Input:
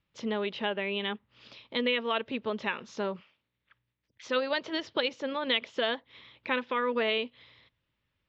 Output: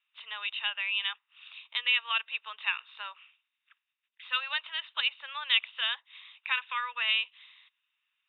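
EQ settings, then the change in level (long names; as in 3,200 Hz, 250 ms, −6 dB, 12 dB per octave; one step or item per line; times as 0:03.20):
four-pole ladder high-pass 1,200 Hz, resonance 25%
Chebyshev low-pass with heavy ripple 3,800 Hz, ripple 9 dB
high-shelf EQ 2,500 Hz +9 dB
+9.0 dB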